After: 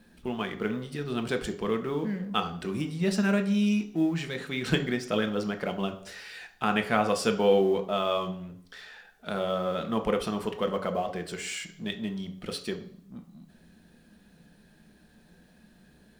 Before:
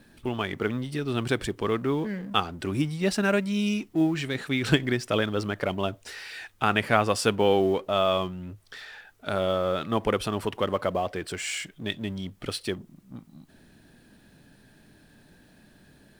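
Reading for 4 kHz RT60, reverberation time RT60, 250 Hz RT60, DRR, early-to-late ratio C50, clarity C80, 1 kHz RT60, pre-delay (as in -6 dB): 0.70 s, 0.55 s, 0.60 s, 5.0 dB, 12.0 dB, 15.5 dB, 0.55 s, 3 ms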